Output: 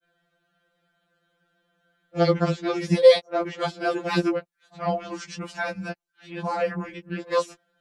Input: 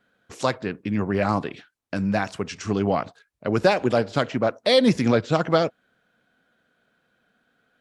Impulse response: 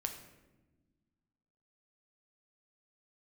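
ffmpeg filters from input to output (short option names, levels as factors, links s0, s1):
-af "areverse,afftfilt=real='re*2.83*eq(mod(b,8),0)':imag='im*2.83*eq(mod(b,8),0)':win_size=2048:overlap=0.75"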